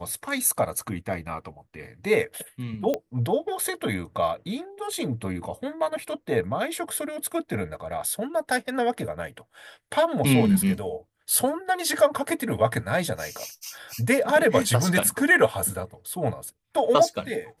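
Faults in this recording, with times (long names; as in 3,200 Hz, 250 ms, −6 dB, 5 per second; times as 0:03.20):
0:02.94: click −14 dBFS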